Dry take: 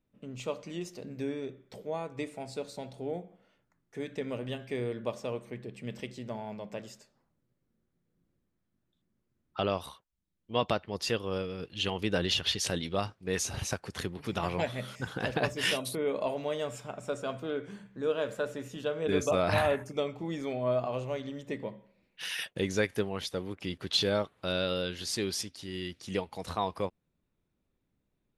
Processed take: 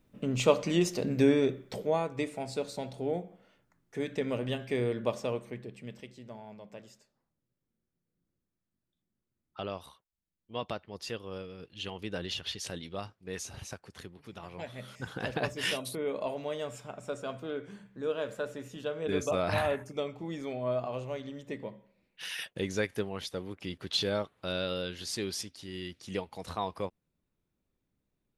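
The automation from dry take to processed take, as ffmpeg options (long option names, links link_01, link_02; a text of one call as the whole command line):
ffmpeg -i in.wav -af "volume=23dB,afade=type=out:start_time=1.41:duration=0.74:silence=0.398107,afade=type=out:start_time=5.17:duration=0.84:silence=0.281838,afade=type=out:start_time=13.32:duration=1.18:silence=0.473151,afade=type=in:start_time=14.5:duration=0.6:silence=0.266073" out.wav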